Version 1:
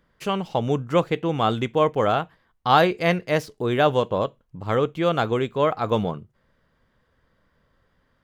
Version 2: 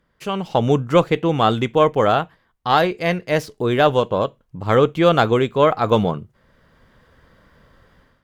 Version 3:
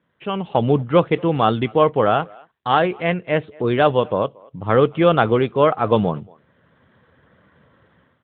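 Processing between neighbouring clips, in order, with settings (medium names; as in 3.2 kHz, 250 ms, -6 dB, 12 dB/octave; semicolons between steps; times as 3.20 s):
Chebyshev shaper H 2 -18 dB, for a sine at -3.5 dBFS; level rider gain up to 14 dB; trim -1 dB
speakerphone echo 230 ms, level -24 dB; AMR-NB 12.2 kbps 8 kHz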